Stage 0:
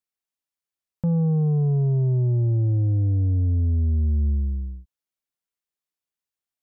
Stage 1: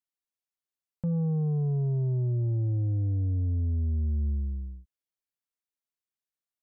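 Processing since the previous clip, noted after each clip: notch 840 Hz, Q 27; gain -6.5 dB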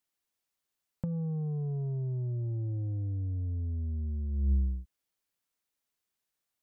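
negative-ratio compressor -31 dBFS, ratio -0.5; gain +1.5 dB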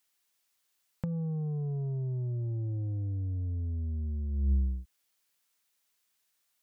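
mismatched tape noise reduction encoder only

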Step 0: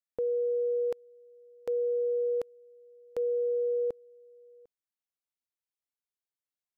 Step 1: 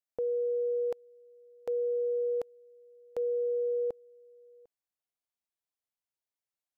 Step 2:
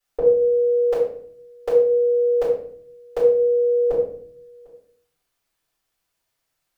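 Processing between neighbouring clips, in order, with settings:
bell 730 Hz +5.5 dB; gain -3 dB
shoebox room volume 81 m³, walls mixed, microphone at 4.1 m; gain +3.5 dB

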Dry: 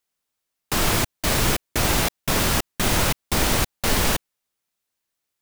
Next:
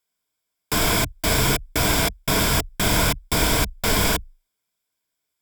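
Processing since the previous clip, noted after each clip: ripple EQ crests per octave 1.7, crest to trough 9 dB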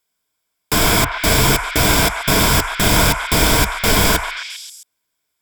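delay with a stepping band-pass 0.133 s, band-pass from 1100 Hz, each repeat 0.7 oct, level -3 dB; gain +5.5 dB

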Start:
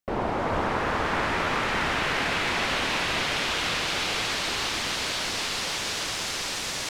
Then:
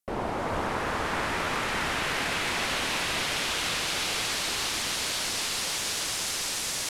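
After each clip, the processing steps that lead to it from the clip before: bell 11000 Hz +11 dB 1.3 oct; gain -3.5 dB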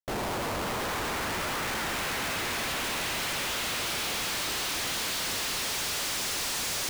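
limiter -25.5 dBFS, peak gain reduction 9 dB; Schmitt trigger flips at -45.5 dBFS; gain +3.5 dB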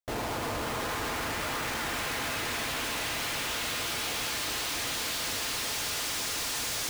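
notch comb 190 Hz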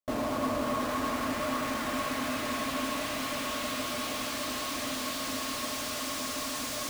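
small resonant body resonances 260/590/1100 Hz, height 17 dB, ringing for 80 ms; gain -4 dB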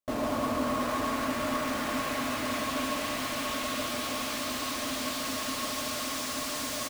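echo 0.14 s -6 dB

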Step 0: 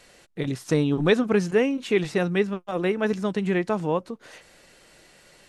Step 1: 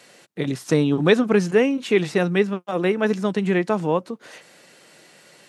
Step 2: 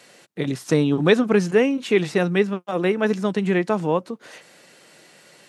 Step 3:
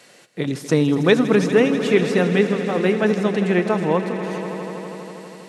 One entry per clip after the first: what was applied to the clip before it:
HPF 130 Hz 24 dB/oct; gain +3.5 dB
nothing audible
swelling echo 81 ms, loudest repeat 5, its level -15 dB; gain +1 dB

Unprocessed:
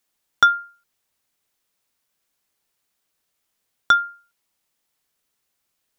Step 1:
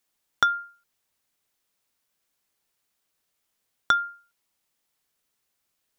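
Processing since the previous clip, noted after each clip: compressor, threshold -15 dBFS, peak gain reduction 6.5 dB; gain -2 dB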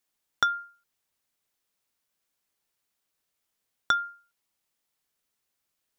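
dynamic EQ 5400 Hz, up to +5 dB, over -42 dBFS, Q 1.2; gain -3.5 dB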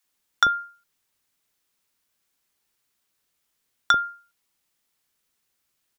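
bands offset in time highs, lows 40 ms, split 650 Hz; gain +5.5 dB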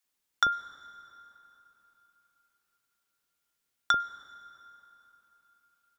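plate-style reverb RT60 3.7 s, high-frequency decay 0.7×, pre-delay 90 ms, DRR 16.5 dB; gain -6 dB

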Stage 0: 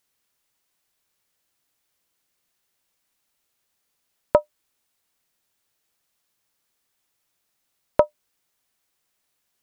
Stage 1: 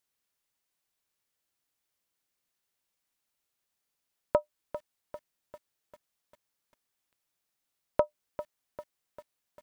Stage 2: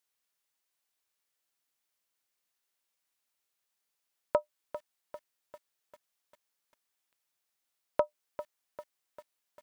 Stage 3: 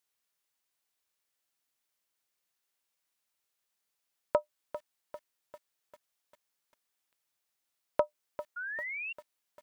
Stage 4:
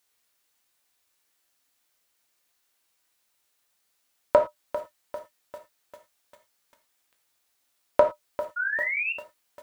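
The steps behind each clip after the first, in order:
lo-fi delay 0.397 s, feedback 55%, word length 7-bit, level -12.5 dB; gain -8.5 dB
low shelf 300 Hz -10 dB
painted sound rise, 8.56–9.13, 1400–2800 Hz -38 dBFS
non-linear reverb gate 0.13 s falling, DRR 3.5 dB; gain +8.5 dB

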